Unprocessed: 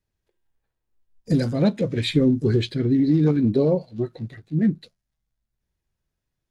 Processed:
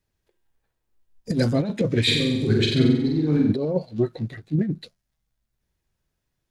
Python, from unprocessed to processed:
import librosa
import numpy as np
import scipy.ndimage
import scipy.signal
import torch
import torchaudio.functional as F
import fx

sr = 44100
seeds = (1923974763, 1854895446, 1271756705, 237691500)

y = fx.low_shelf(x, sr, hz=170.0, db=-2.5)
y = fx.over_compress(y, sr, threshold_db=-22.0, ratio=-0.5)
y = fx.room_flutter(y, sr, wall_m=7.9, rt60_s=0.87, at=(2.07, 3.52), fade=0.02)
y = F.gain(torch.from_numpy(y), 1.5).numpy()